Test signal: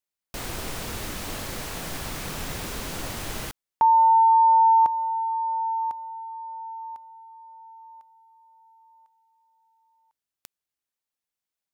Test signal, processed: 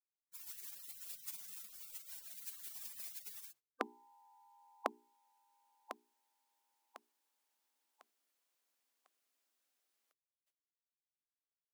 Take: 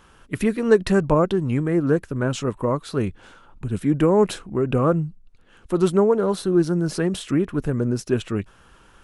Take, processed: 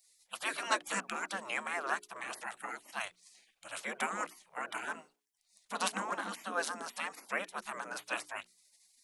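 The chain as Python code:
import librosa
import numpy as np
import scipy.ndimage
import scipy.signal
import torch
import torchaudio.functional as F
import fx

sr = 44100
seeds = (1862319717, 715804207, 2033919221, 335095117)

y = scipy.signal.sosfilt(scipy.signal.ellip(6, 1.0, 50, 220.0, 'highpass', fs=sr, output='sos'), x)
y = fx.spec_gate(y, sr, threshold_db=-25, keep='weak')
y = fx.hum_notches(y, sr, base_hz=60, count=7)
y = y * 10.0 ** (6.0 / 20.0)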